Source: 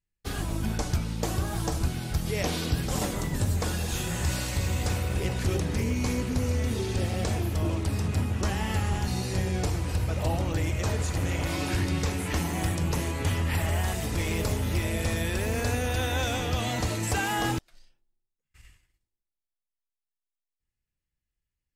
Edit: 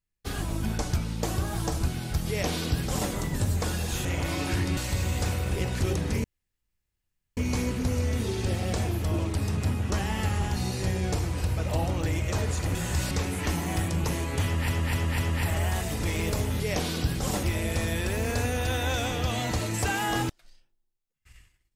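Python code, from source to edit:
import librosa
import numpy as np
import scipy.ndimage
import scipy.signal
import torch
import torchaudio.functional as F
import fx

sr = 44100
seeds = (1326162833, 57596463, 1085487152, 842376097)

y = fx.edit(x, sr, fx.duplicate(start_s=2.28, length_s=0.83, to_s=14.72),
    fx.swap(start_s=4.05, length_s=0.36, other_s=11.26, other_length_s=0.72),
    fx.insert_room_tone(at_s=5.88, length_s=1.13),
    fx.repeat(start_s=13.32, length_s=0.25, count=4), tone=tone)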